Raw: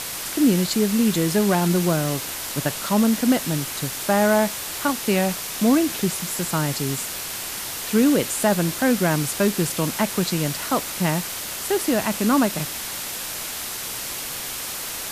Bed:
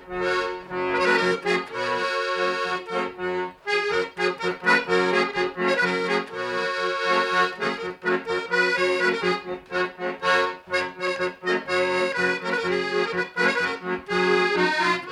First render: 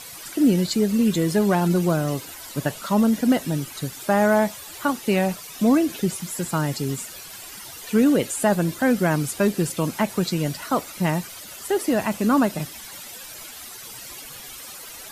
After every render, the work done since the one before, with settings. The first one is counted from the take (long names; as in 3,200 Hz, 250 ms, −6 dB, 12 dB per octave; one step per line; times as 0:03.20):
broadband denoise 13 dB, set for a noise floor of −31 dBFS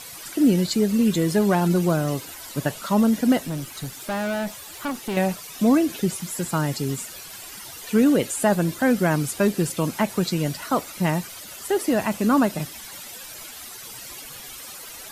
0:03.40–0:05.17: tube saturation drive 23 dB, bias 0.3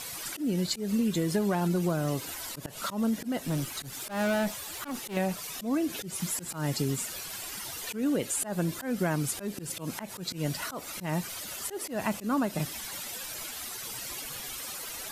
downward compressor 8 to 1, threshold −24 dBFS, peak gain reduction 11 dB
volume swells 129 ms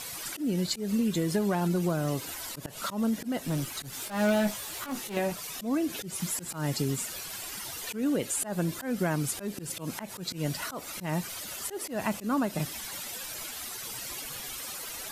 0:03.91–0:05.32: double-tracking delay 19 ms −5.5 dB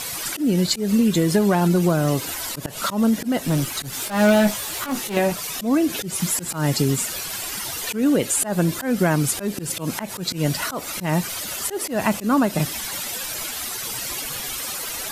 level +9.5 dB